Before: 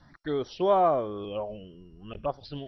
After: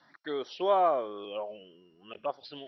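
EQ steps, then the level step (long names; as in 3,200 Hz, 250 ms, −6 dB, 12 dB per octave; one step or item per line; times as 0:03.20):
band-pass filter 340–3,800 Hz
high-shelf EQ 2,100 Hz +8.5 dB
−3.0 dB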